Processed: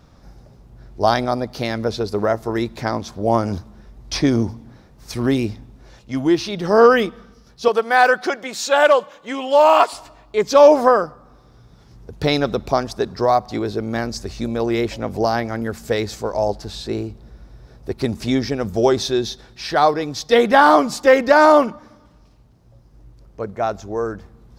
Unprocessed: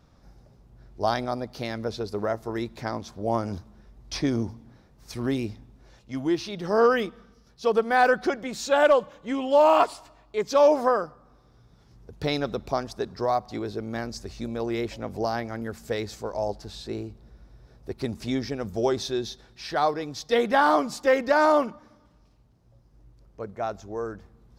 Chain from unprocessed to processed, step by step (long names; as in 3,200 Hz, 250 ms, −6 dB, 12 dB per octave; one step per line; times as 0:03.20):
0:07.68–0:09.93: high-pass filter 670 Hz 6 dB per octave
level +8.5 dB